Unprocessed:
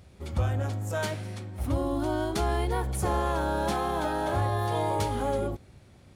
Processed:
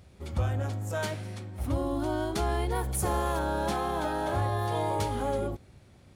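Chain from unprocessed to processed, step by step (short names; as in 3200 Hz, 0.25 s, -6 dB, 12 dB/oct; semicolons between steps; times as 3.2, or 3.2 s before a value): 2.75–3.39 high shelf 8700 Hz +11 dB; gain -1.5 dB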